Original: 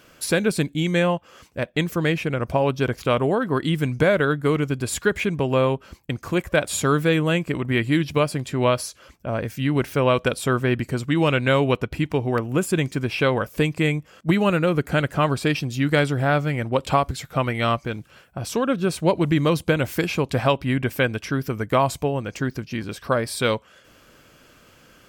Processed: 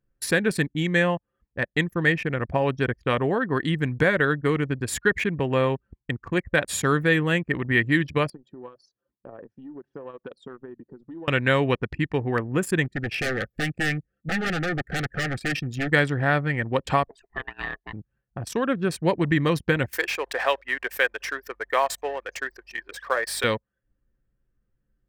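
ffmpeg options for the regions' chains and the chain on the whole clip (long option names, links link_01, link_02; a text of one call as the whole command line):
ffmpeg -i in.wav -filter_complex "[0:a]asettb=1/sr,asplit=3[link_01][link_02][link_03];[link_01]atrim=end=8.304[link_04];[link_02]atrim=start=8.3:end=11.28,asetpts=PTS-STARTPTS,afade=type=in:duration=0.004:curve=qsin,afade=type=out:start_time=2.976:duration=0.004:curve=qsin,equalizer=frequency=2100:width=2.2:gain=-13,acompressor=threshold=-27dB:ratio=10:attack=3.2:release=140:knee=1:detection=peak,highpass=250,lowpass=5400[link_05];[link_03]atrim=start=11.276[link_06];[link_04][link_05]acrossfade=duration=0.004:curve1=hsin:curve2=qsin[link_07];[link_07][link_06]acrossfade=duration=0.004:curve1=qsin:curve2=hsin,asettb=1/sr,asplit=3[link_08][link_09][link_10];[link_08]atrim=end=12.844[link_11];[link_09]atrim=start=12.84:end=15.92,asetpts=PTS-STARTPTS,afade=type=in:duration=0.004:curve=qsin,afade=type=out:start_time=3.076:duration=0.004:curve=qsin,aeval=exprs='0.112*(abs(mod(val(0)/0.112+3,4)-2)-1)':channel_layout=same,asuperstop=centerf=990:order=12:qfactor=2.8[link_12];[link_10]atrim=start=15.916[link_13];[link_11][link_12]acrossfade=duration=0.004:curve1=hsin:curve2=qsin[link_14];[link_14][link_13]acrossfade=duration=0.004:curve1=qsin:curve2=hsin,asettb=1/sr,asplit=3[link_15][link_16][link_17];[link_15]atrim=end=17.084[link_18];[link_16]atrim=start=17.08:end=17.93,asetpts=PTS-STARTPTS,afade=type=in:duration=0.004:curve=qsin,afade=type=out:start_time=0.846:duration=0.004:curve=qsin,highpass=frequency=92:poles=1,acrossover=split=410|1300[link_19][link_20][link_21];[link_19]acompressor=threshold=-35dB:ratio=4[link_22];[link_20]acompressor=threshold=-33dB:ratio=4[link_23];[link_21]acompressor=threshold=-32dB:ratio=4[link_24];[link_22][link_23][link_24]amix=inputs=3:normalize=0,aeval=exprs='val(0)*sin(2*PI*540*n/s)':channel_layout=same[link_25];[link_17]atrim=start=17.926[link_26];[link_18][link_25]acrossfade=duration=0.004:curve1=hsin:curve2=qsin[link_27];[link_27][link_26]acrossfade=duration=0.004:curve1=qsin:curve2=hsin,asettb=1/sr,asplit=3[link_28][link_29][link_30];[link_28]atrim=end=19.934[link_31];[link_29]atrim=start=19.93:end=23.44,asetpts=PTS-STARTPTS,afade=type=in:duration=0.004:curve=qsin,afade=type=out:start_time=3.506:duration=0.004:curve=qsin,aeval=exprs='val(0)+0.5*0.0237*sgn(val(0))':channel_layout=same,highpass=frequency=460:width=0.5412,highpass=frequency=460:width=1.3066,aeval=exprs='val(0)+0.00224*(sin(2*PI*50*n/s)+sin(2*PI*2*50*n/s)/2+sin(2*PI*3*50*n/s)/3+sin(2*PI*4*50*n/s)/4+sin(2*PI*5*50*n/s)/5)':channel_layout=same[link_32];[link_30]atrim=start=23.436[link_33];[link_31][link_32]acrossfade=duration=0.004:curve1=hsin:curve2=qsin[link_34];[link_34][link_33]acrossfade=duration=0.004:curve1=qsin:curve2=hsin,bandreject=frequency=620:width=12,anlmdn=25.1,equalizer=frequency=1800:width_type=o:width=0.21:gain=14,volume=-2.5dB" out.wav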